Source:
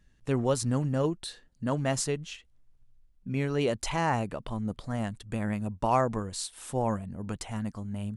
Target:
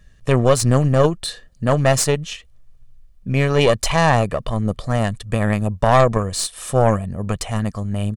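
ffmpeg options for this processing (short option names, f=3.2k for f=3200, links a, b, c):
-af "aecho=1:1:1.7:0.5,aeval=exprs='0.266*(cos(1*acos(clip(val(0)/0.266,-1,1)))-cos(1*PI/2))+0.0473*(cos(4*acos(clip(val(0)/0.266,-1,1)))-cos(4*PI/2))':c=same,alimiter=level_in=12dB:limit=-1dB:release=50:level=0:latency=1,volume=-1dB"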